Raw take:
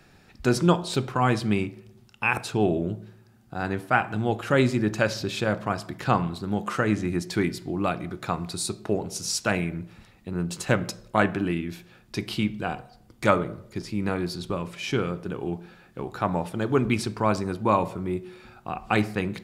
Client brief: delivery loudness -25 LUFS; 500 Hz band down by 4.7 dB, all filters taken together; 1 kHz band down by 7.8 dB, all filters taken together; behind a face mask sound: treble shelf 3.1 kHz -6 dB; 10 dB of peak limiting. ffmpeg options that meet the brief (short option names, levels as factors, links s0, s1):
-af "equalizer=f=500:t=o:g=-4,equalizer=f=1000:t=o:g=-8.5,alimiter=limit=0.119:level=0:latency=1,highshelf=f=3100:g=-6,volume=2.24"